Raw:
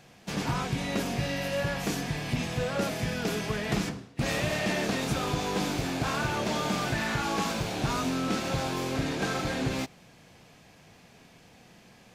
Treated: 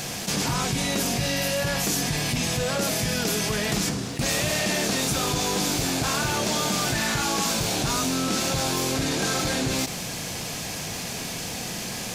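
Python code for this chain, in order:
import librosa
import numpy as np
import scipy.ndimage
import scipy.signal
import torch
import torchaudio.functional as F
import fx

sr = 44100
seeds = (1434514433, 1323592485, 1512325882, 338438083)

y = fx.bass_treble(x, sr, bass_db=0, treble_db=12)
y = fx.env_flatten(y, sr, amount_pct=70)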